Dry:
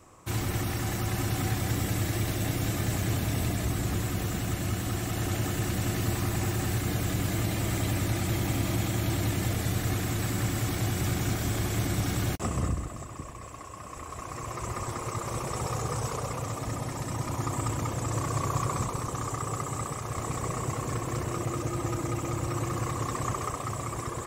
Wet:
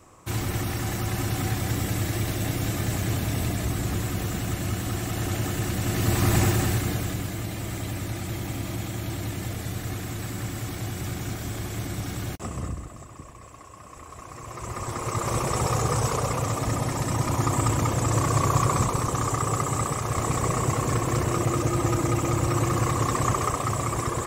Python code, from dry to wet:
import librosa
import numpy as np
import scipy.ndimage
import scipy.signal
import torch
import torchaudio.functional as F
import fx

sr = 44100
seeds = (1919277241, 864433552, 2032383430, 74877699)

y = fx.gain(x, sr, db=fx.line((5.82, 2.0), (6.36, 9.0), (7.34, -3.0), (14.42, -3.0), (15.28, 7.0)))